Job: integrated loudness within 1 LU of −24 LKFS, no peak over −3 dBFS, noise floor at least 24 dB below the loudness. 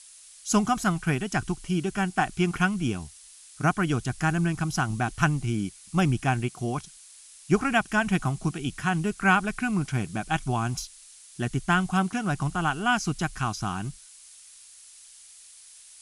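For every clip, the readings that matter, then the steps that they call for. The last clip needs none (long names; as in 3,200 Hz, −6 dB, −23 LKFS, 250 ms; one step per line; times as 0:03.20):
background noise floor −50 dBFS; target noise floor −51 dBFS; integrated loudness −27.0 LKFS; sample peak −7.5 dBFS; target loudness −24.0 LKFS
→ noise reduction from a noise print 6 dB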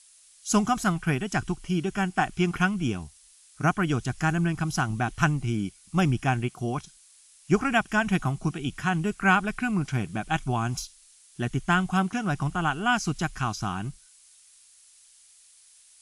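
background noise floor −56 dBFS; integrated loudness −27.0 LKFS; sample peak −7.5 dBFS; target loudness −24.0 LKFS
→ level +3 dB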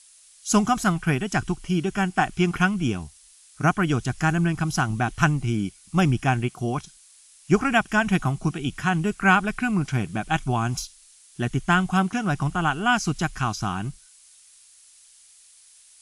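integrated loudness −24.0 LKFS; sample peak −4.5 dBFS; background noise floor −53 dBFS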